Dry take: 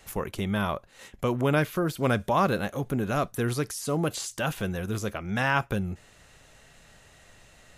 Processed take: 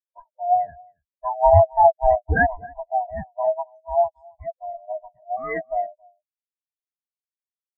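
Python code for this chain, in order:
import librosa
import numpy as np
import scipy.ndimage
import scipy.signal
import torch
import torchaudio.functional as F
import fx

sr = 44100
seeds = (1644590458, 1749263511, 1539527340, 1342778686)

y = fx.band_swap(x, sr, width_hz=500)
y = y + 10.0 ** (-7.0 / 20.0) * np.pad(y, (int(271 * sr / 1000.0), 0))[:len(y)]
y = fx.spectral_expand(y, sr, expansion=4.0)
y = F.gain(torch.from_numpy(y), 7.0).numpy()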